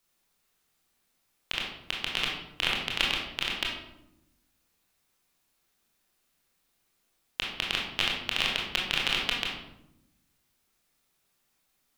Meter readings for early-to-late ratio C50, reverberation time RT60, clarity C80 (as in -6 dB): 2.5 dB, 0.85 s, 6.0 dB